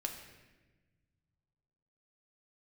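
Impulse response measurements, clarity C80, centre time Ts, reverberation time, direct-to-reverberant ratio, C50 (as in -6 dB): 8.0 dB, 31 ms, 1.2 s, 2.0 dB, 6.5 dB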